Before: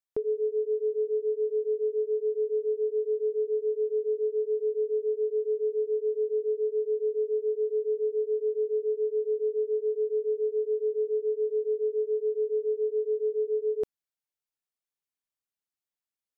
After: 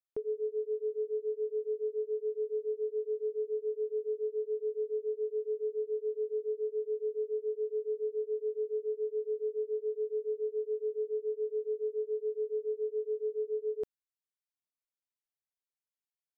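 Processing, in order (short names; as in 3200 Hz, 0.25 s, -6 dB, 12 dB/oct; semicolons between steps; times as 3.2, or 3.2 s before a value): upward expander 1.5:1, over -35 dBFS; gain -5.5 dB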